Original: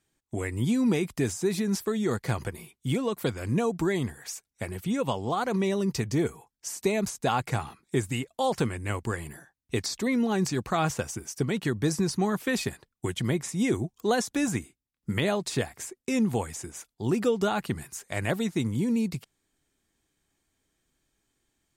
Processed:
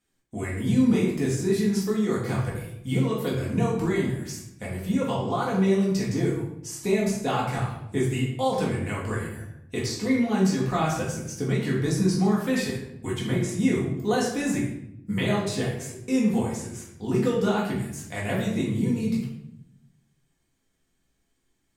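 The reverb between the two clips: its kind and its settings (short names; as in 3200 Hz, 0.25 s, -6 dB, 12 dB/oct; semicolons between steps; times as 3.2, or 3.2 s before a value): shoebox room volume 200 m³, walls mixed, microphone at 1.9 m; gain -5.5 dB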